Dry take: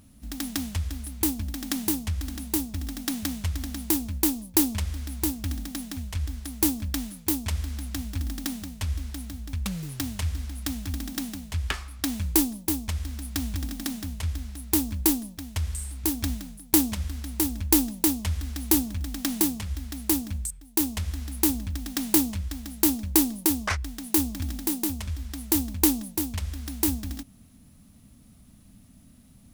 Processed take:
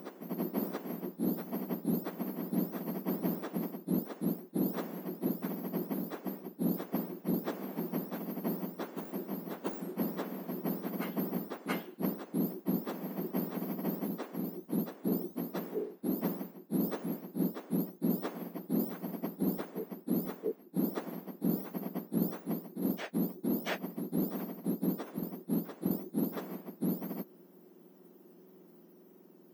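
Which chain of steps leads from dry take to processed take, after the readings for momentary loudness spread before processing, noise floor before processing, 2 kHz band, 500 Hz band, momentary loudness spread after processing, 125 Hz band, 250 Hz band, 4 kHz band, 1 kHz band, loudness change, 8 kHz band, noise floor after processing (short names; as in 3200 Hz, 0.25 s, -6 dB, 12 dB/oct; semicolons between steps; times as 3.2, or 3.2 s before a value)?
11 LU, -53 dBFS, -9.5 dB, +1.0 dB, 6 LU, -9.0 dB, -5.0 dB, -18.0 dB, -4.5 dB, -9.0 dB, -25.5 dB, -58 dBFS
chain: spectrum mirrored in octaves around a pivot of 1900 Hz; reverse; compressor 16:1, threshold -26 dBFS, peak gain reduction 22.5 dB; reverse; wow and flutter 28 cents; reverse echo 0.68 s -6 dB; gain -3.5 dB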